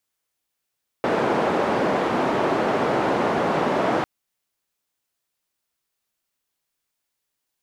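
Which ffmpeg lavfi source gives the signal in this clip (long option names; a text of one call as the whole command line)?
ffmpeg -f lavfi -i "anoisesrc=color=white:duration=3:sample_rate=44100:seed=1,highpass=frequency=210,lowpass=frequency=750,volume=-1.1dB" out.wav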